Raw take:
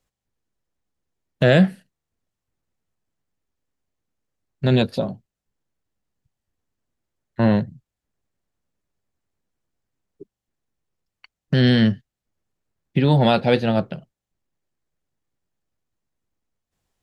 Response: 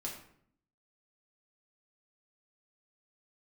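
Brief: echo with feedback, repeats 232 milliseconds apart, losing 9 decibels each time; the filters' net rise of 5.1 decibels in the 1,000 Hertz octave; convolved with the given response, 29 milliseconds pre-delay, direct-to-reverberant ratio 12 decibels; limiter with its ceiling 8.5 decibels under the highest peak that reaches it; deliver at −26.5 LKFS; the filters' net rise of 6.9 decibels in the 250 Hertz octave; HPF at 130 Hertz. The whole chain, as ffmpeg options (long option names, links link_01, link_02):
-filter_complex "[0:a]highpass=130,equalizer=frequency=250:width_type=o:gain=8.5,equalizer=frequency=1000:width_type=o:gain=6.5,alimiter=limit=-9dB:level=0:latency=1,aecho=1:1:232|464|696|928:0.355|0.124|0.0435|0.0152,asplit=2[link_01][link_02];[1:a]atrim=start_sample=2205,adelay=29[link_03];[link_02][link_03]afir=irnorm=-1:irlink=0,volume=-12dB[link_04];[link_01][link_04]amix=inputs=2:normalize=0,volume=-6.5dB"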